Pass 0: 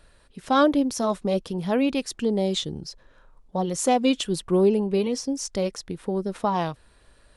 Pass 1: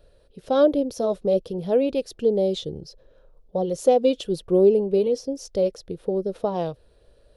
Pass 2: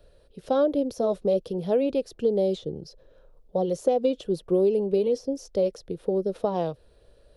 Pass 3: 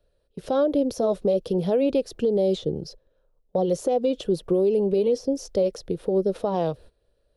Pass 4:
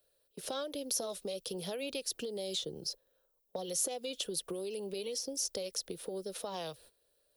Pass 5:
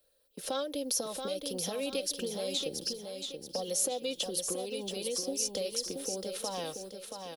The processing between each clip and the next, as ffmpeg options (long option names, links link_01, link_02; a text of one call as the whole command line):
ffmpeg -i in.wav -af "equalizer=frequency=250:width_type=o:width=1:gain=-6,equalizer=frequency=500:width_type=o:width=1:gain=11,equalizer=frequency=1000:width_type=o:width=1:gain=-10,equalizer=frequency=2000:width_type=o:width=1:gain=-10,equalizer=frequency=8000:width_type=o:width=1:gain=-12" out.wav
ffmpeg -i in.wav -filter_complex "[0:a]acrossover=split=130|1600[link_01][link_02][link_03];[link_01]acompressor=threshold=-49dB:ratio=4[link_04];[link_02]acompressor=threshold=-19dB:ratio=4[link_05];[link_03]acompressor=threshold=-45dB:ratio=4[link_06];[link_04][link_05][link_06]amix=inputs=3:normalize=0" out.wav
ffmpeg -i in.wav -af "agate=range=-18dB:threshold=-48dB:ratio=16:detection=peak,alimiter=limit=-20dB:level=0:latency=1:release=143,volume=6dB" out.wav
ffmpeg -i in.wav -filter_complex "[0:a]aemphasis=mode=production:type=riaa,acrossover=split=130|1500|4700[link_01][link_02][link_03][link_04];[link_02]acompressor=threshold=-34dB:ratio=6[link_05];[link_01][link_05][link_03][link_04]amix=inputs=4:normalize=0,volume=-4.5dB" out.wav
ffmpeg -i in.wav -filter_complex "[0:a]aecho=1:1:3.8:0.43,asplit=2[link_01][link_02];[link_02]aecho=0:1:678|1356|2034|2712|3390:0.501|0.19|0.0724|0.0275|0.0105[link_03];[link_01][link_03]amix=inputs=2:normalize=0,volume=2dB" out.wav